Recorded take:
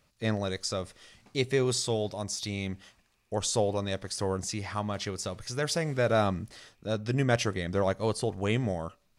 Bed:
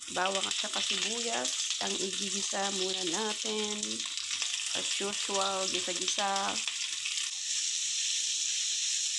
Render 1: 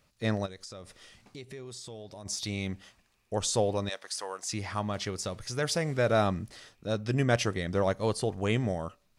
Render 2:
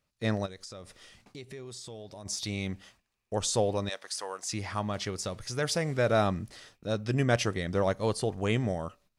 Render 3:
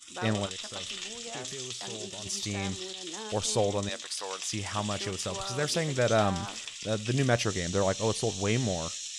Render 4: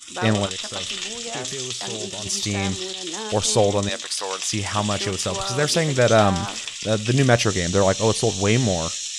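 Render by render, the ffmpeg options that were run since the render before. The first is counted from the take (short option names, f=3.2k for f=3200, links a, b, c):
-filter_complex "[0:a]asplit=3[a][b][c];[a]afade=t=out:st=0.45:d=0.02[d];[b]acompressor=threshold=-43dB:ratio=4:attack=3.2:release=140:knee=1:detection=peak,afade=t=in:st=0.45:d=0.02,afade=t=out:st=2.25:d=0.02[e];[c]afade=t=in:st=2.25:d=0.02[f];[d][e][f]amix=inputs=3:normalize=0,asettb=1/sr,asplit=3[g][h][i];[g]atrim=end=3.894[j];[h]atrim=start=3.89:end=4.52,asetpts=PTS-STARTPTS,afade=t=in:d=0.004:c=qsin,afade=t=out:st=0.626:d=0.004:c=qsin,highpass=780[k];[i]atrim=start=4.516[l];[j][k]acrossfade=d=0.004:c1=hsin:c2=qsin[m];[m][l]acrossfade=d=0.004:c1=qsin:c2=hsin"
-af "agate=range=-11dB:threshold=-59dB:ratio=16:detection=peak"
-filter_complex "[1:a]volume=-7dB[a];[0:a][a]amix=inputs=2:normalize=0"
-af "volume=9dB"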